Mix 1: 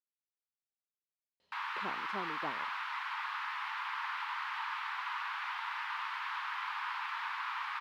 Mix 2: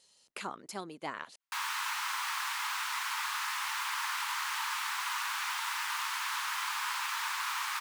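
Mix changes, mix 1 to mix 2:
speech: entry −1.40 s
master: remove high-frequency loss of the air 370 metres

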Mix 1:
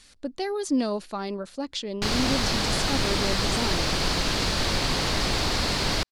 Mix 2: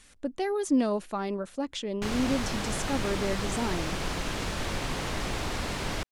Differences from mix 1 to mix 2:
background −5.5 dB
master: add parametric band 4,500 Hz −10 dB 0.61 octaves

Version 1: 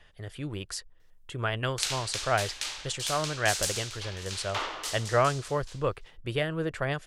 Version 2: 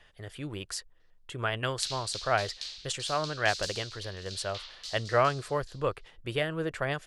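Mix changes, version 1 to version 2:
background: add resonant band-pass 4,300 Hz, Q 3.3
master: add low-shelf EQ 230 Hz −4.5 dB

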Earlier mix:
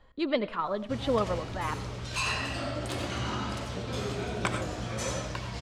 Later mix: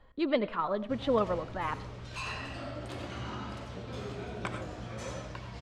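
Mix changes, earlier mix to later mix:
background −6.0 dB
master: add high-shelf EQ 4,900 Hz −10 dB

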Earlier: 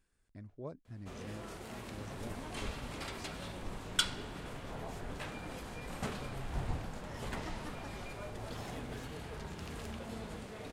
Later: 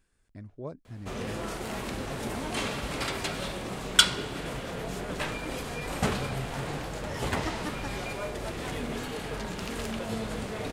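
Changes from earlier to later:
speech +5.5 dB
first sound +11.5 dB
second sound: muted

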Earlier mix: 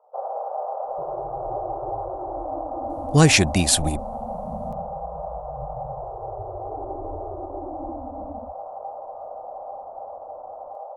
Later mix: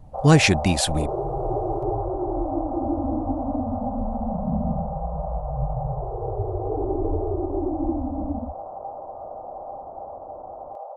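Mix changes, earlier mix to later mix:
speech: entry −2.90 s
second sound +11.0 dB
master: add high-shelf EQ 6,500 Hz −11.5 dB

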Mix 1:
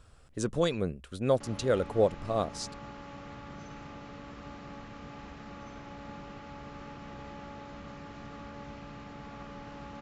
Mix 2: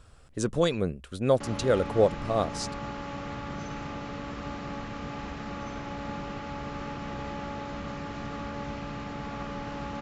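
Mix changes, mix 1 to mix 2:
speech +3.0 dB
background +8.5 dB

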